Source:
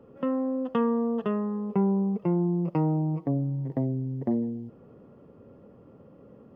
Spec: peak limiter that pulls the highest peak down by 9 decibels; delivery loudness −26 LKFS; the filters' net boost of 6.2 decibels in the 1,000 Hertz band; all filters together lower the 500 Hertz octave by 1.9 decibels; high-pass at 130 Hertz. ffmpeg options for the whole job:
ffmpeg -i in.wav -af "highpass=130,equalizer=frequency=500:width_type=o:gain=-4,equalizer=frequency=1000:width_type=o:gain=8.5,volume=4.5dB,alimiter=limit=-17.5dB:level=0:latency=1" out.wav

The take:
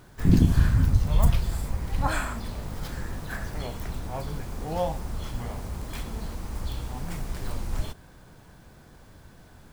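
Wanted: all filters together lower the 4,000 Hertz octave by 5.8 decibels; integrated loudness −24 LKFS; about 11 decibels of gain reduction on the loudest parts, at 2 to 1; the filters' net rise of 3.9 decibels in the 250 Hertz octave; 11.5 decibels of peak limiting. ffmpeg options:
ffmpeg -i in.wav -af "equalizer=frequency=250:width_type=o:gain=5.5,equalizer=frequency=4000:width_type=o:gain=-7.5,acompressor=threshold=-33dB:ratio=2,volume=14dB,alimiter=limit=-13dB:level=0:latency=1" out.wav

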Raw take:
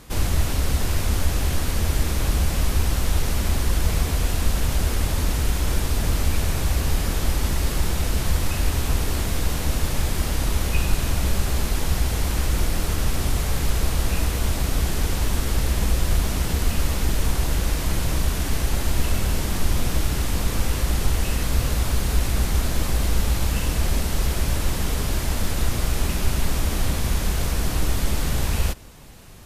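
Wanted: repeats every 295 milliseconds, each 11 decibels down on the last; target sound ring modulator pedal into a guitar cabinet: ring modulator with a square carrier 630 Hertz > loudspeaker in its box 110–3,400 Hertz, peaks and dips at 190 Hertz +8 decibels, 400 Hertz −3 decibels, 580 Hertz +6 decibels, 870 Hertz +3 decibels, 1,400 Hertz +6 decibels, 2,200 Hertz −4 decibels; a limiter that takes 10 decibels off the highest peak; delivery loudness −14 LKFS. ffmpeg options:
ffmpeg -i in.wav -af "alimiter=limit=-16dB:level=0:latency=1,aecho=1:1:295|590|885:0.282|0.0789|0.0221,aeval=exprs='val(0)*sgn(sin(2*PI*630*n/s))':channel_layout=same,highpass=110,equalizer=frequency=190:width_type=q:width=4:gain=8,equalizer=frequency=400:width_type=q:width=4:gain=-3,equalizer=frequency=580:width_type=q:width=4:gain=6,equalizer=frequency=870:width_type=q:width=4:gain=3,equalizer=frequency=1400:width_type=q:width=4:gain=6,equalizer=frequency=2200:width_type=q:width=4:gain=-4,lowpass=frequency=3400:width=0.5412,lowpass=frequency=3400:width=1.3066,volume=5.5dB" out.wav

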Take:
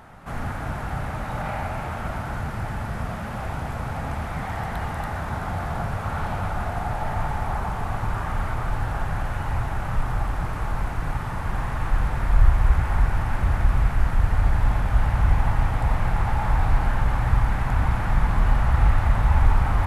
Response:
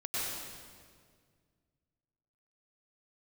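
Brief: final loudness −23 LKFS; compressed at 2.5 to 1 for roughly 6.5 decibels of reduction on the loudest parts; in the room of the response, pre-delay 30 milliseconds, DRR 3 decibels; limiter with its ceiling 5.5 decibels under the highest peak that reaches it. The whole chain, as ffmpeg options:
-filter_complex "[0:a]acompressor=threshold=-20dB:ratio=2.5,alimiter=limit=-16.5dB:level=0:latency=1,asplit=2[link_01][link_02];[1:a]atrim=start_sample=2205,adelay=30[link_03];[link_02][link_03]afir=irnorm=-1:irlink=0,volume=-8.5dB[link_04];[link_01][link_04]amix=inputs=2:normalize=0,volume=4dB"

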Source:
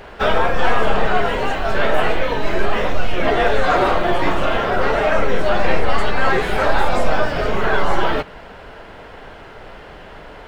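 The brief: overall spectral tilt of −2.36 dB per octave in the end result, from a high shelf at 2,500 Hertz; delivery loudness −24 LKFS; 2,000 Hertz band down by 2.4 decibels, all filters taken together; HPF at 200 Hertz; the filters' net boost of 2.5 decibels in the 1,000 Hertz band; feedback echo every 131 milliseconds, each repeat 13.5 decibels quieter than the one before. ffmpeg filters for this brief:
ffmpeg -i in.wav -af "highpass=200,equalizer=frequency=1000:width_type=o:gain=5,equalizer=frequency=2000:width_type=o:gain=-3.5,highshelf=frequency=2500:gain=-4.5,aecho=1:1:131|262:0.211|0.0444,volume=-5.5dB" out.wav

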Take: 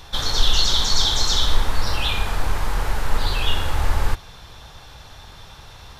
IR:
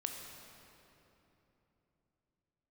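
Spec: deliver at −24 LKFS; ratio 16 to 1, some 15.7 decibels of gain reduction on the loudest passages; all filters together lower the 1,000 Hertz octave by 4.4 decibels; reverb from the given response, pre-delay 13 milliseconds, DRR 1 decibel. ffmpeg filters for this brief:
-filter_complex "[0:a]equalizer=frequency=1000:width_type=o:gain=-5.5,acompressor=threshold=-25dB:ratio=16,asplit=2[link_01][link_02];[1:a]atrim=start_sample=2205,adelay=13[link_03];[link_02][link_03]afir=irnorm=-1:irlink=0,volume=-1dB[link_04];[link_01][link_04]amix=inputs=2:normalize=0,volume=8.5dB"

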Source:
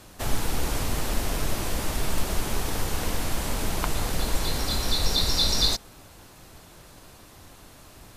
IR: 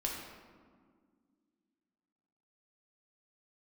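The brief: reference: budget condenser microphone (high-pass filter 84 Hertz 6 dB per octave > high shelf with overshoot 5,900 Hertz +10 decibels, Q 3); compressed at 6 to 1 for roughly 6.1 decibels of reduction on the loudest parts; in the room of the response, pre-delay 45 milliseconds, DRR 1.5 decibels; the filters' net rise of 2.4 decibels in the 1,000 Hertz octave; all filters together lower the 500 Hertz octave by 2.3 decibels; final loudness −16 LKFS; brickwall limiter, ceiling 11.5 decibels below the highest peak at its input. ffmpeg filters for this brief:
-filter_complex "[0:a]equalizer=frequency=500:width_type=o:gain=-4,equalizer=frequency=1000:width_type=o:gain=4.5,acompressor=threshold=-23dB:ratio=6,alimiter=limit=-23dB:level=0:latency=1,asplit=2[link_01][link_02];[1:a]atrim=start_sample=2205,adelay=45[link_03];[link_02][link_03]afir=irnorm=-1:irlink=0,volume=-4.5dB[link_04];[link_01][link_04]amix=inputs=2:normalize=0,highpass=frequency=84:poles=1,highshelf=frequency=5900:width_type=q:width=3:gain=10,volume=10dB"

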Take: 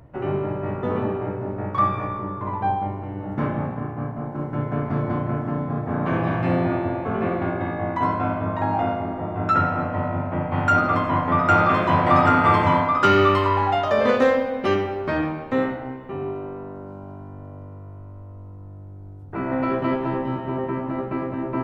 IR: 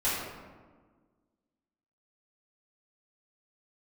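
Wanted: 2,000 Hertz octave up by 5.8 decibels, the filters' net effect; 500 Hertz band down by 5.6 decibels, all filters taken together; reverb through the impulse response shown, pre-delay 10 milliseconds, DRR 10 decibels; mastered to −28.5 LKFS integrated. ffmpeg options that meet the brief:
-filter_complex "[0:a]equalizer=frequency=500:width_type=o:gain=-8,equalizer=frequency=2000:width_type=o:gain=8.5,asplit=2[link_01][link_02];[1:a]atrim=start_sample=2205,adelay=10[link_03];[link_02][link_03]afir=irnorm=-1:irlink=0,volume=-20.5dB[link_04];[link_01][link_04]amix=inputs=2:normalize=0,volume=-7dB"

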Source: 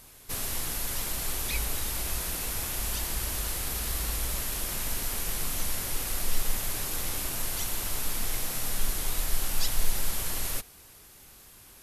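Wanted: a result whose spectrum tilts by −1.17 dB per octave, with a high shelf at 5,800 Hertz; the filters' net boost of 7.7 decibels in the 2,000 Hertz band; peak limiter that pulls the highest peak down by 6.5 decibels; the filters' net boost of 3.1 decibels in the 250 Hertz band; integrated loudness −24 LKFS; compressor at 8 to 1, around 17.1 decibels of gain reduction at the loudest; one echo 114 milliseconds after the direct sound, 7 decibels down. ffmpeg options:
ffmpeg -i in.wav -af "equalizer=frequency=250:width_type=o:gain=4,equalizer=frequency=2000:width_type=o:gain=9,highshelf=frequency=5800:gain=3.5,acompressor=threshold=-35dB:ratio=8,alimiter=level_in=6.5dB:limit=-24dB:level=0:latency=1,volume=-6.5dB,aecho=1:1:114:0.447,volume=15.5dB" out.wav

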